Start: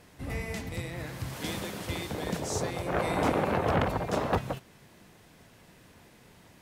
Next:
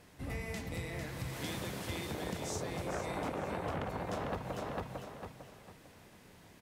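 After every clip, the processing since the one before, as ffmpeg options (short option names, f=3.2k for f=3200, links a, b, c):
-af "aecho=1:1:450|900|1350|1800:0.501|0.16|0.0513|0.0164,acompressor=threshold=-31dB:ratio=6,volume=-3.5dB"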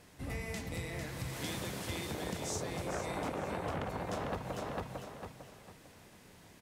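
-af "equalizer=f=7.8k:t=o:w=1.7:g=3"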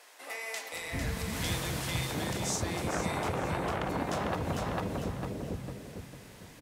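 -filter_complex "[0:a]acrossover=split=500[a][b];[a]adelay=730[c];[c][b]amix=inputs=2:normalize=0,volume=6.5dB"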